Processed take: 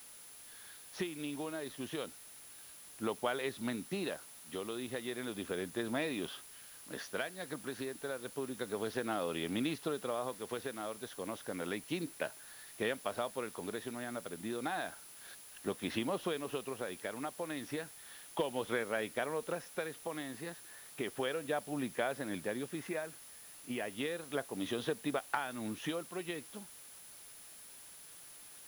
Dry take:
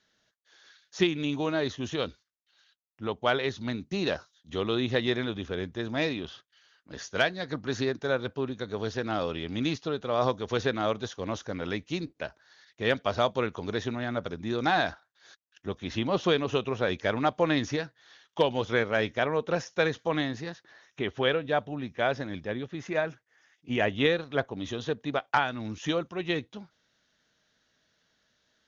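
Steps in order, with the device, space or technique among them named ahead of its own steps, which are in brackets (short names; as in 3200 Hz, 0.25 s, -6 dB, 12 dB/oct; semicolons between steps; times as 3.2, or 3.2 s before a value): medium wave at night (BPF 190–3800 Hz; compressor, threshold -33 dBFS, peak gain reduction 14 dB; tremolo 0.32 Hz, depth 49%; whine 10000 Hz -56 dBFS; white noise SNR 16 dB); gain +1.5 dB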